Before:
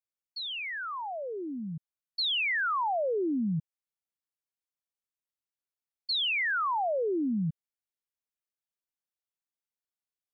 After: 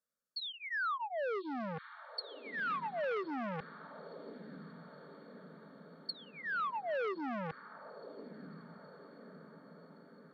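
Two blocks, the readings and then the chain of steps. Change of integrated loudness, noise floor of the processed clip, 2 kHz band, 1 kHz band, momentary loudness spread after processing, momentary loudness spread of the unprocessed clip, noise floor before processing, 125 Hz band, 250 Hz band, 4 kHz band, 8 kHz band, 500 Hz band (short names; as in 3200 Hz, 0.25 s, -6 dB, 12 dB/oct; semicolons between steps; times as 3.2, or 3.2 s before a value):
-10.0 dB, -59 dBFS, -7.5 dB, -6.0 dB, 19 LU, 12 LU, under -85 dBFS, -11.5 dB, -10.5 dB, -14.0 dB, n/a, -5.5 dB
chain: treble ducked by the level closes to 970 Hz, closed at -27.5 dBFS; high shelf 2700 Hz -9.5 dB; fixed phaser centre 520 Hz, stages 8; reverse; compressor 6:1, threshold -43 dBFS, peak gain reduction 13.5 dB; reverse; vibrato 3.8 Hz 6.1 cents; notch comb 1000 Hz; treble ducked by the level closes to 2200 Hz, closed at -44.5 dBFS; on a send: diffused feedback echo 1.113 s, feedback 59%, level -16 dB; on the sum: core saturation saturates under 1200 Hz; gain +11.5 dB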